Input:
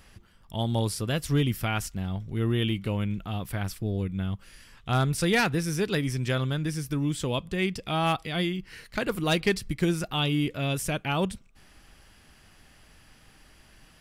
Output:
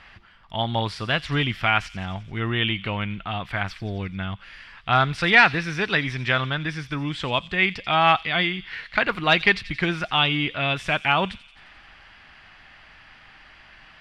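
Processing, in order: FFT filter 490 Hz 0 dB, 690 Hz +9 dB, 2.1 kHz +14 dB, 4.2 kHz +6 dB, 6.3 kHz -7 dB, 14 kHz -26 dB; on a send: feedback echo behind a high-pass 87 ms, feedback 66%, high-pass 4.1 kHz, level -11.5 dB; on the sum: trim -1 dB

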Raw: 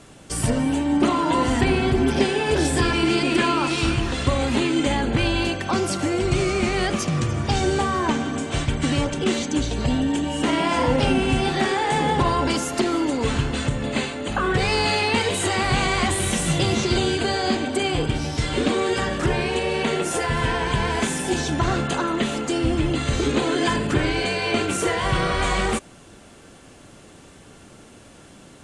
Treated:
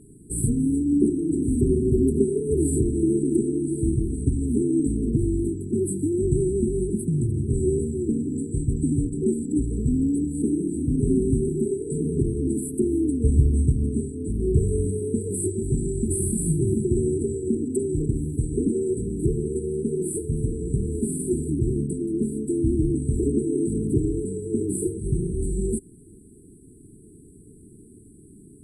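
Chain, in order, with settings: 12.81–14.99 s: peaking EQ 71 Hz +12 dB 0.75 oct; brick-wall FIR band-stop 450–7700 Hz

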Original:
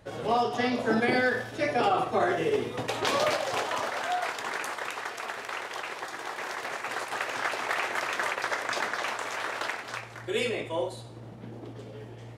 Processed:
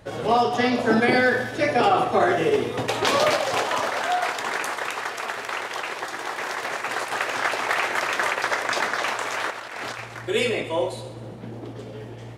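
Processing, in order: 9.50–10.00 s: compressor with a negative ratio -41 dBFS, ratio -1; on a send: two-band feedback delay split 570 Hz, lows 237 ms, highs 132 ms, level -16 dB; on the sum: trim +6 dB

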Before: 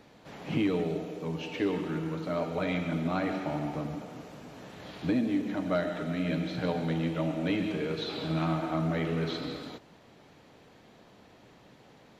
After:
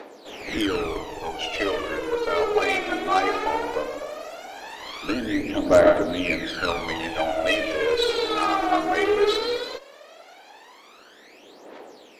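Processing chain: high-pass 350 Hz 24 dB/octave; Chebyshev shaper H 6 -15 dB, 8 -15 dB, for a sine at -17.5 dBFS; phaser 0.17 Hz, delay 2.8 ms, feedback 74%; trim +8.5 dB

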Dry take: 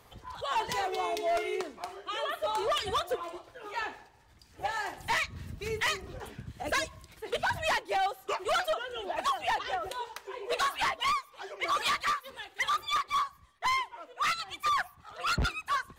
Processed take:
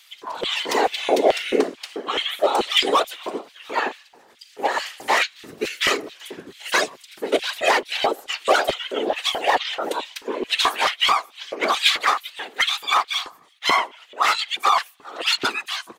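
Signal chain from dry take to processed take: whisper effect; LFO high-pass square 2.3 Hz 400–3100 Hz; harmony voices -7 st -9 dB, -4 st -16 dB; trim +9 dB

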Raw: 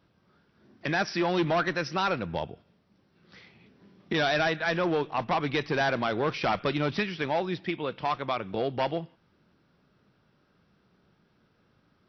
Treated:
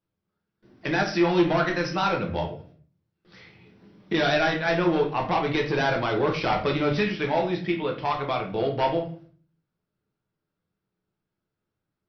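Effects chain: gate with hold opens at -53 dBFS; simulated room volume 36 m³, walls mixed, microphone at 0.57 m

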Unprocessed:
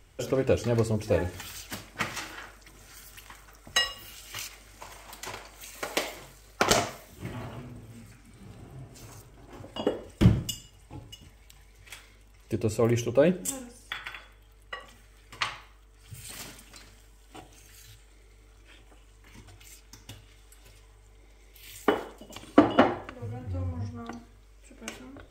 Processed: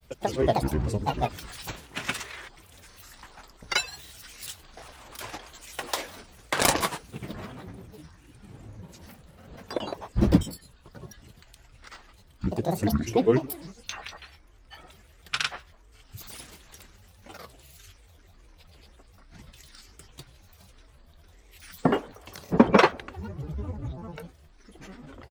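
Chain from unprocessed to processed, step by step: granulator, grains 20 per s, pitch spread up and down by 12 st; trim +1.5 dB

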